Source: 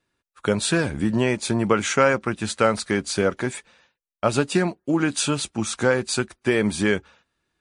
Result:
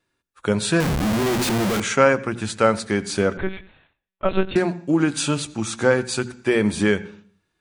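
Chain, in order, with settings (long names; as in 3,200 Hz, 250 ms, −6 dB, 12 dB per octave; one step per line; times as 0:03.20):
mains-hum notches 60/120/180/240 Hz
on a send at −20 dB: convolution reverb RT60 0.45 s, pre-delay 76 ms
0:00.80–0:01.80: on the sum: comparator with hysteresis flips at −34 dBFS
0:03.37–0:04.56: one-pitch LPC vocoder at 8 kHz 190 Hz
harmonic and percussive parts rebalanced harmonic +5 dB
level −2 dB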